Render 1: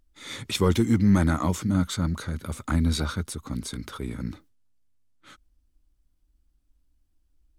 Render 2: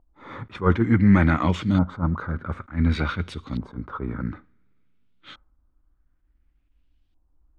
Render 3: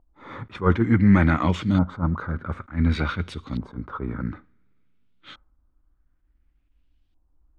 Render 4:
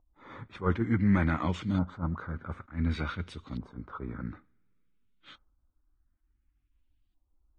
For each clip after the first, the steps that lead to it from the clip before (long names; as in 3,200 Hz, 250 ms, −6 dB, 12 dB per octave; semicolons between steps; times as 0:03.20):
coupled-rooms reverb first 0.44 s, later 3.3 s, from −27 dB, DRR 18.5 dB; auto-filter low-pass saw up 0.56 Hz 850–3,600 Hz; level that may rise only so fast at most 260 dB per second; level +3 dB
no processing that can be heard
level −8.5 dB; Ogg Vorbis 32 kbit/s 22,050 Hz